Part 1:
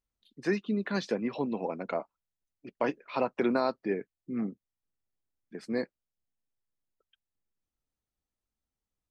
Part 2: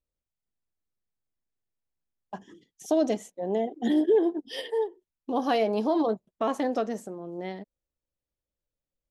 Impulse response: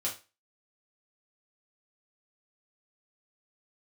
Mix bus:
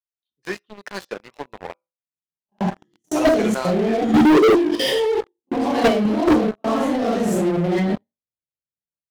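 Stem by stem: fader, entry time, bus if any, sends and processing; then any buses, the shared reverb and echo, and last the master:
-15.5 dB, 0.00 s, muted 1.73–3.15, send -6.5 dB, bell 240 Hz -13.5 dB 1.2 oct
-2.0 dB, 0.30 s, send -8 dB, phase scrambler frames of 0.2 s; bell 150 Hz +11 dB 2 oct; level quantiser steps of 19 dB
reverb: on, RT60 0.30 s, pre-delay 3 ms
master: HPF 74 Hz 6 dB/oct; sample leveller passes 5

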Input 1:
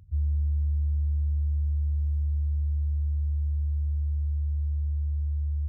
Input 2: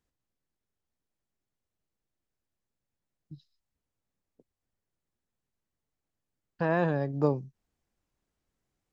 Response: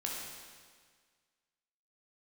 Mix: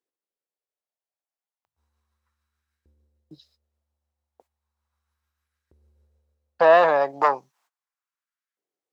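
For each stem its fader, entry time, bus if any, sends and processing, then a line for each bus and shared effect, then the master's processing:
-4.5 dB, 1.65 s, no send, tremolo triangle 6.7 Hz, depth 30%; auto duck -12 dB, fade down 0.55 s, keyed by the second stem
+1.5 dB, 0.00 s, no send, sine folder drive 7 dB, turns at -12.5 dBFS; gate -56 dBFS, range -21 dB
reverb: off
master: LFO high-pass saw up 0.35 Hz 380–1600 Hz

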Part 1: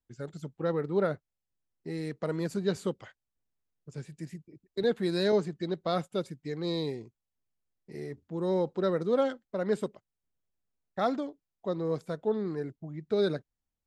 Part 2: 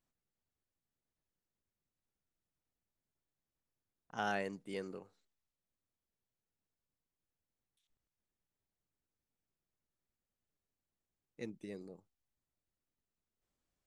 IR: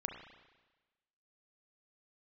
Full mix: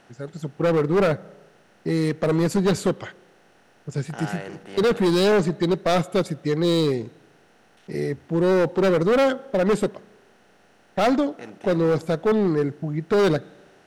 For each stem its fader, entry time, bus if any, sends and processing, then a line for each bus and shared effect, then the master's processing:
+3.0 dB, 0.00 s, send -17.5 dB, AGC gain up to 9.5 dB
-1.5 dB, 0.00 s, send -10.5 dB, per-bin compression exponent 0.4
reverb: on, RT60 1.2 s, pre-delay 31 ms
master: overloaded stage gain 15.5 dB

